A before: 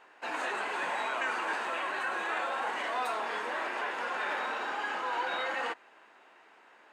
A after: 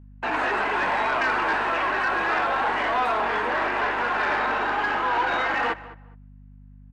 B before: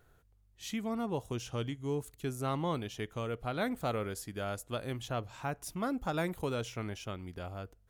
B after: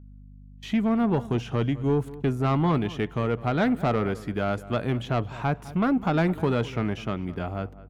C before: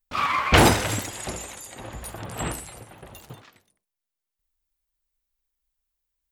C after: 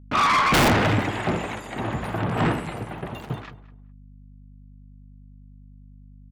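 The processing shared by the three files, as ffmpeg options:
-filter_complex "[0:a]agate=range=0.0178:threshold=0.00316:ratio=16:detection=peak,highpass=150,bandreject=f=530:w=12,acrossover=split=3700[s0][s1];[s1]acompressor=threshold=0.00447:ratio=4:attack=1:release=60[s2];[s0][s2]amix=inputs=2:normalize=0,bass=f=250:g=7,treble=f=4000:g=-15,acontrast=65,aeval=exprs='(mod(1.68*val(0)+1,2)-1)/1.68':c=same,aeval=exprs='val(0)+0.00316*(sin(2*PI*50*n/s)+sin(2*PI*2*50*n/s)/2+sin(2*PI*3*50*n/s)/3+sin(2*PI*4*50*n/s)/4+sin(2*PI*5*50*n/s)/5)':c=same,asoftclip=type=tanh:threshold=0.0891,asplit=2[s3][s4];[s4]adelay=207,lowpass=f=2200:p=1,volume=0.141,asplit=2[s5][s6];[s6]adelay=207,lowpass=f=2200:p=1,volume=0.21[s7];[s3][s5][s7]amix=inputs=3:normalize=0,volume=1.78"

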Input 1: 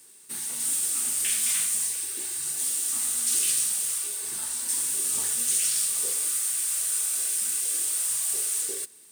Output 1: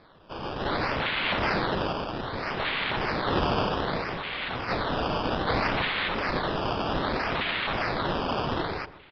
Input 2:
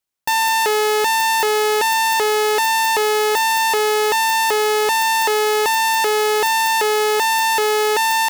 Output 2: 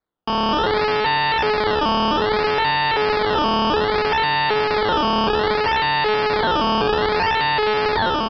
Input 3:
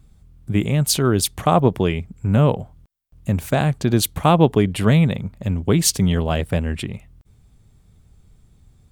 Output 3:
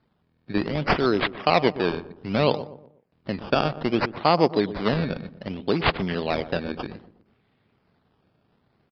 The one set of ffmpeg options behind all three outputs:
-filter_complex "[0:a]aeval=exprs='if(lt(val(0),0),0.708*val(0),val(0))':c=same,highpass=270,dynaudnorm=f=260:g=3:m=1.41,acrusher=samples=15:mix=1:aa=0.000001:lfo=1:lforange=15:lforate=0.63,asplit=2[s0][s1];[s1]adelay=121,lowpass=f=1000:p=1,volume=0.224,asplit=2[s2][s3];[s3]adelay=121,lowpass=f=1000:p=1,volume=0.41,asplit=2[s4][s5];[s5]adelay=121,lowpass=f=1000:p=1,volume=0.41,asplit=2[s6][s7];[s7]adelay=121,lowpass=f=1000:p=1,volume=0.41[s8];[s2][s4][s6][s8]amix=inputs=4:normalize=0[s9];[s0][s9]amix=inputs=2:normalize=0,aresample=11025,aresample=44100,volume=0.75"

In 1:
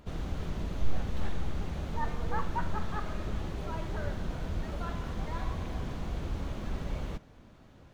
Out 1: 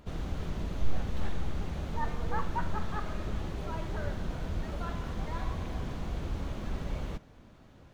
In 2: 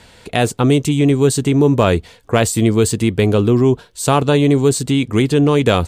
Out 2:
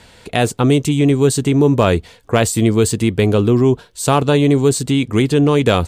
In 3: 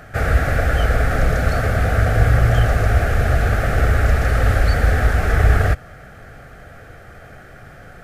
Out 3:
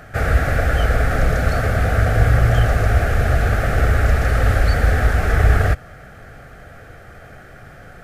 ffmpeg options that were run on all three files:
-af "asoftclip=type=hard:threshold=0.75"

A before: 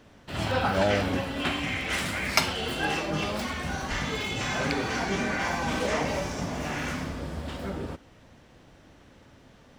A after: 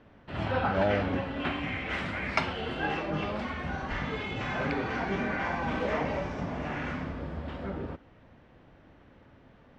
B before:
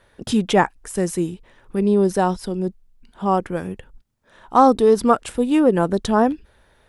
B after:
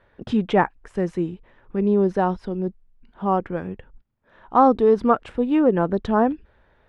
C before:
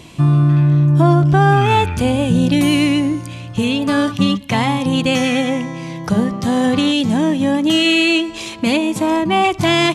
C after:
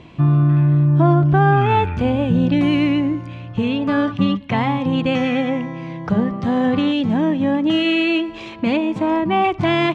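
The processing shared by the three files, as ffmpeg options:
-af "lowpass=2400,volume=0.794"

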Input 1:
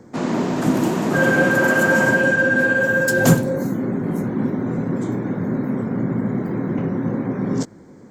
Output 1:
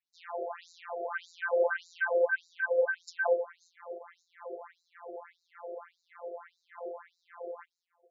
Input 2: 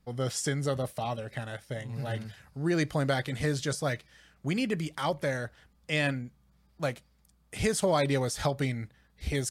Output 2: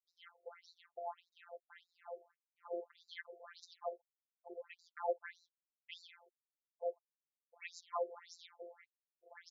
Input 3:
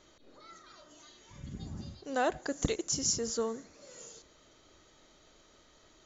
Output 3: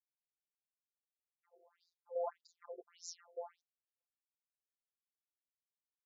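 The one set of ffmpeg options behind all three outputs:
-af "aeval=exprs='sgn(val(0))*max(abs(val(0))-0.00531,0)':c=same,agate=range=0.0224:threshold=0.00562:ratio=3:detection=peak,afftfilt=real='hypot(re,im)*cos(PI*b)':imag='0':win_size=1024:overlap=0.75,aemphasis=mode=reproduction:type=riaa,afftfilt=real='re*between(b*sr/1024,510*pow(5400/510,0.5+0.5*sin(2*PI*1.7*pts/sr))/1.41,510*pow(5400/510,0.5+0.5*sin(2*PI*1.7*pts/sr))*1.41)':imag='im*between(b*sr/1024,510*pow(5400/510,0.5+0.5*sin(2*PI*1.7*pts/sr))/1.41,510*pow(5400/510,0.5+0.5*sin(2*PI*1.7*pts/sr))*1.41)':win_size=1024:overlap=0.75,volume=0.668"

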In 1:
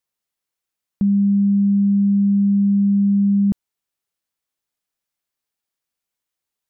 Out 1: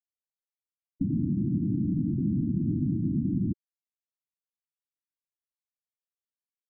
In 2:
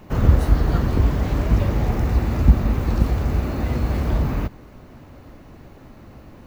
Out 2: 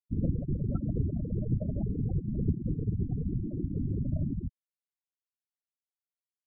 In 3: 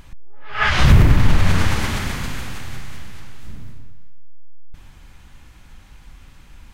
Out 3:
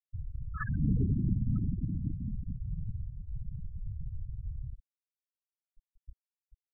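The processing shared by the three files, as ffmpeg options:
-filter_complex "[0:a]afftfilt=real='hypot(re,im)*cos(2*PI*random(0))':imag='hypot(re,im)*sin(2*PI*random(1))':win_size=512:overlap=0.75,acrossover=split=110|340|6400[s0][s1][s2][s3];[s0]acompressor=threshold=0.02:ratio=4[s4];[s1]acompressor=threshold=0.0355:ratio=4[s5];[s2]acompressor=threshold=0.0178:ratio=4[s6];[s3]acompressor=threshold=0.00112:ratio=4[s7];[s4][s5][s6][s7]amix=inputs=4:normalize=0,afftfilt=real='re*gte(hypot(re,im),0.0891)':imag='im*gte(hypot(re,im),0.0891)':win_size=1024:overlap=0.75"

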